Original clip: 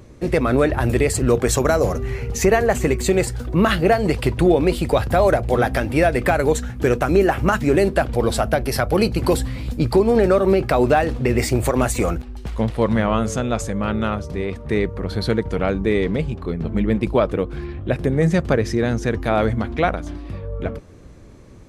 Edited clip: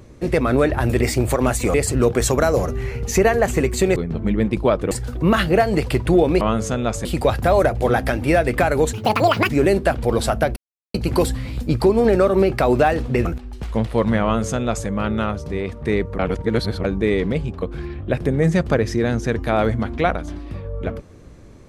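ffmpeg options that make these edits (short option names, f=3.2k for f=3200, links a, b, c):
-filter_complex "[0:a]asplit=15[a][b][c][d][e][f][g][h][i][j][k][l][m][n][o];[a]atrim=end=1.012[p];[b]atrim=start=11.358:end=12.092[q];[c]atrim=start=1.008:end=3.232[r];[d]atrim=start=16.458:end=17.412[s];[e]atrim=start=3.228:end=4.732[t];[f]atrim=start=13.068:end=13.712[u];[g]atrim=start=4.728:end=6.614[v];[h]atrim=start=6.61:end=7.6,asetpts=PTS-STARTPTS,asetrate=77616,aresample=44100,atrim=end_sample=24806,asetpts=PTS-STARTPTS[w];[i]atrim=start=7.596:end=8.67,asetpts=PTS-STARTPTS,afade=t=out:st=1.07:d=0.004:c=hsin[x];[j]atrim=start=8.67:end=9.05,asetpts=PTS-STARTPTS,volume=0[y];[k]atrim=start=9.05:end=11.362,asetpts=PTS-STARTPTS,afade=t=in:d=0.004:c=hsin[z];[l]atrim=start=12.088:end=15.032[aa];[m]atrim=start=15.028:end=15.682,asetpts=PTS-STARTPTS,areverse[ab];[n]atrim=start=15.678:end=16.462[ac];[o]atrim=start=17.408[ad];[p][q]acrossfade=d=0.004:c1=hsin:c2=hsin[ae];[ae][r]acrossfade=d=0.004:c1=hsin:c2=hsin[af];[af][s]acrossfade=d=0.004:c1=hsin:c2=hsin[ag];[ag][t]acrossfade=d=0.004:c1=hsin:c2=hsin[ah];[ah][u]acrossfade=d=0.004:c1=hsin:c2=hsin[ai];[ai][v]acrossfade=d=0.004:c1=hsin:c2=hsin[aj];[aj][w]acrossfade=d=0.004:c1=hsin:c2=hsin[ak];[x][y][z]concat=n=3:v=0:a=1[al];[ak][al]acrossfade=d=0.004:c1=hsin:c2=hsin[am];[am][aa]acrossfade=d=0.004:c1=hsin:c2=hsin[an];[an][ab]acrossfade=d=0.004:c1=hsin:c2=hsin[ao];[ao][ac]acrossfade=d=0.004:c1=hsin:c2=hsin[ap];[ap][ad]acrossfade=d=0.004:c1=hsin:c2=hsin"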